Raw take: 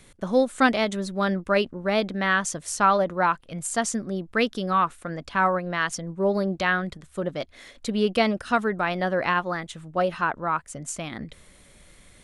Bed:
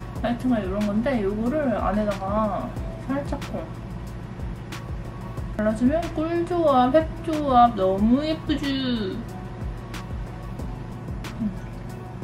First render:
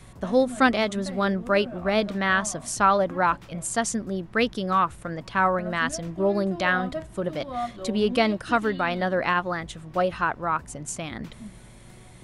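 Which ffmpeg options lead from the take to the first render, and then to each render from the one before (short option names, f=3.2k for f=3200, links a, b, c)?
-filter_complex "[1:a]volume=-14.5dB[a];[0:a][a]amix=inputs=2:normalize=0"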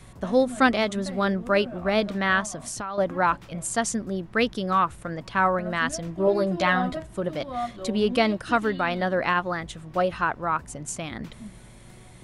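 -filter_complex "[0:a]asettb=1/sr,asplit=3[a][b][c];[a]atrim=end=2.414[d];[b]atrim=start=2.41:end=2.98,asetpts=PTS-STARTPTS,afade=t=in:d=0.004:c=qsin,afade=t=out:st=0.566:d=0.004:c=qsin,acompressor=threshold=-29dB:ratio=6:attack=3.2:release=140:knee=1:detection=peak[e];[c]atrim=start=2.976[f];[d][e]acrossfade=d=0.004:c1=hsin:c2=qsin[g];[g][f]acrossfade=d=0.004:c1=qsin:c2=hsin,asettb=1/sr,asplit=3[h][i][j];[h]atrim=end=6.264[k];[i]atrim=start=6.26:end=6.97,asetpts=PTS-STARTPTS,afade=t=in:d=0.004:c=qsin,afade=t=out:st=0.706:d=0.004:c=qsin,asplit=2[l][m];[m]adelay=12,volume=-2.5dB[n];[l][n]amix=inputs=2:normalize=0,atrim=end_sample=31311[o];[j]atrim=start=6.966[p];[k][o]acrossfade=d=0.004:c1=hsin:c2=qsin[q];[q][p]acrossfade=d=0.004:c1=qsin:c2=hsin"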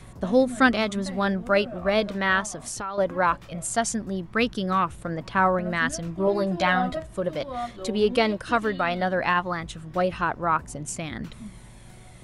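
-af "aphaser=in_gain=1:out_gain=1:delay=2.4:decay=0.27:speed=0.19:type=triangular"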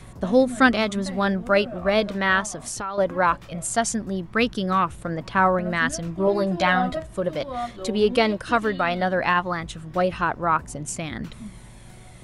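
-af "volume=2dB"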